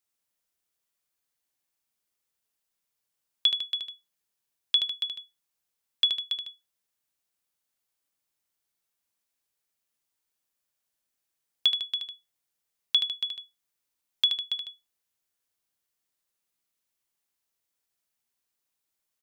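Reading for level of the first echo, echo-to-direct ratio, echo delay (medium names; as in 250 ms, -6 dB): -6.0 dB, -5.0 dB, 76 ms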